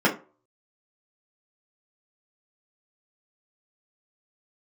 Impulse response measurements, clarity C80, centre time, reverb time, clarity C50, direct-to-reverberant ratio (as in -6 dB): 19.0 dB, 17 ms, 0.35 s, 12.5 dB, -5.5 dB